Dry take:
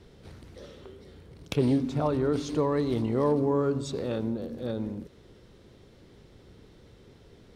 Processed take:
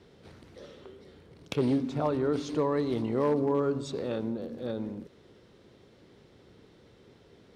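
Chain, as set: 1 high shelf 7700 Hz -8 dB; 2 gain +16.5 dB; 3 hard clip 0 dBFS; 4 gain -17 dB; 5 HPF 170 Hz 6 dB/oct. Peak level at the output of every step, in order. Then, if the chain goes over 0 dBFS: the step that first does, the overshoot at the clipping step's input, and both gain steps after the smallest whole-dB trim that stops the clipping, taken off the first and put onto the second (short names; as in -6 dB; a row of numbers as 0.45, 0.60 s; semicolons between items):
-13.0, +3.5, 0.0, -17.0, -16.0 dBFS; step 2, 3.5 dB; step 2 +12.5 dB, step 4 -13 dB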